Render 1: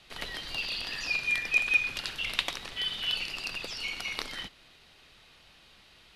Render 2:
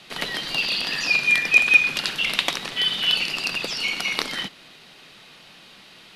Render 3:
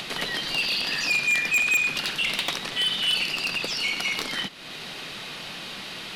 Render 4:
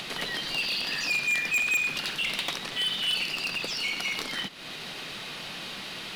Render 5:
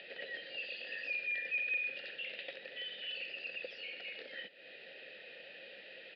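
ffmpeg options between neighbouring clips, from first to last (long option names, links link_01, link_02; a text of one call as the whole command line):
ffmpeg -i in.wav -af "lowshelf=frequency=110:width_type=q:width=1.5:gain=-13.5,alimiter=level_in=11dB:limit=-1dB:release=50:level=0:latency=1,volume=-1dB" out.wav
ffmpeg -i in.wav -af "acompressor=mode=upward:threshold=-25dB:ratio=2.5,asoftclip=type=tanh:threshold=-17.5dB" out.wav
ffmpeg -i in.wav -filter_complex "[0:a]asplit=2[link_01][link_02];[link_02]alimiter=level_in=5.5dB:limit=-24dB:level=0:latency=1:release=144,volume=-5.5dB,volume=-2dB[link_03];[link_01][link_03]amix=inputs=2:normalize=0,acrusher=bits=7:mode=log:mix=0:aa=0.000001,volume=-5.5dB" out.wav
ffmpeg -i in.wav -filter_complex "[0:a]aresample=11025,aresample=44100,asplit=3[link_01][link_02][link_03];[link_01]bandpass=frequency=530:width_type=q:width=8,volume=0dB[link_04];[link_02]bandpass=frequency=1840:width_type=q:width=8,volume=-6dB[link_05];[link_03]bandpass=frequency=2480:width_type=q:width=8,volume=-9dB[link_06];[link_04][link_05][link_06]amix=inputs=3:normalize=0,volume=-1dB" out.wav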